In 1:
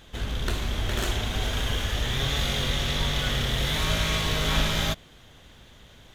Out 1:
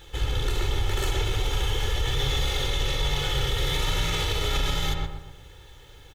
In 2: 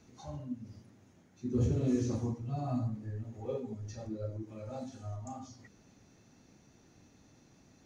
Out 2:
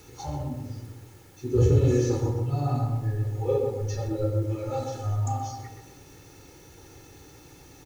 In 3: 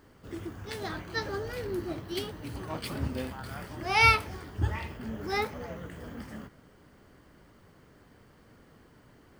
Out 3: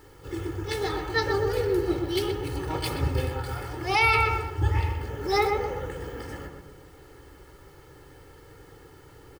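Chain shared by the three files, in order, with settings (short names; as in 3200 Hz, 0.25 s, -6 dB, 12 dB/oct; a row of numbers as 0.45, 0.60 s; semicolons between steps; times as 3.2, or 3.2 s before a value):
de-hum 85.12 Hz, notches 34; dynamic EQ 1600 Hz, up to -5 dB, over -50 dBFS, Q 7.2; comb 2.3 ms, depth 88%; in parallel at +1 dB: vocal rider within 5 dB 2 s; on the sum: requantised 10-bit, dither triangular; on a send: darkening echo 0.125 s, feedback 46%, low-pass 1600 Hz, level -3.5 dB; on the sum: maximiser +6.5 dB; match loudness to -27 LUFS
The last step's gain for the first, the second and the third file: -15.0, -6.0, -12.0 dB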